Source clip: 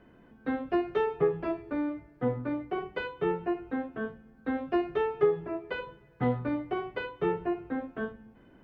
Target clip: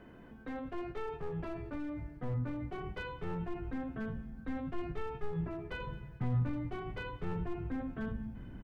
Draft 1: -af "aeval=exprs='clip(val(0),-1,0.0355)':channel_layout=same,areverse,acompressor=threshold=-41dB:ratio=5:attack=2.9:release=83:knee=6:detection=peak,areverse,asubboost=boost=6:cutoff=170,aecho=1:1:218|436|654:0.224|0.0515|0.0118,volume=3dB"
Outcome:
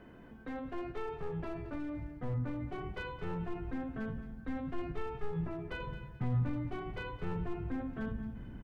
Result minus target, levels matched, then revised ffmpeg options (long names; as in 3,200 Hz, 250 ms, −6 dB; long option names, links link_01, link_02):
echo-to-direct +8.5 dB
-af "aeval=exprs='clip(val(0),-1,0.0355)':channel_layout=same,areverse,acompressor=threshold=-41dB:ratio=5:attack=2.9:release=83:knee=6:detection=peak,areverse,asubboost=boost=6:cutoff=170,aecho=1:1:218|436:0.0841|0.0194,volume=3dB"